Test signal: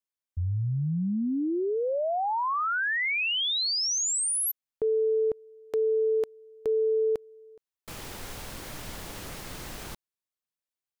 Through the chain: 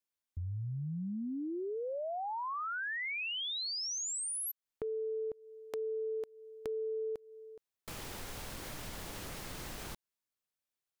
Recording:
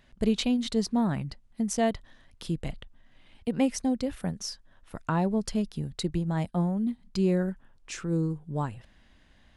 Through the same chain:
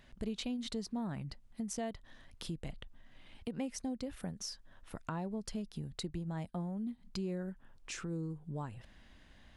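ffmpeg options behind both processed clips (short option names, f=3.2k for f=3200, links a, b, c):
-af "acompressor=threshold=-42dB:ratio=2.5:attack=13:release=166:knee=6:detection=rms"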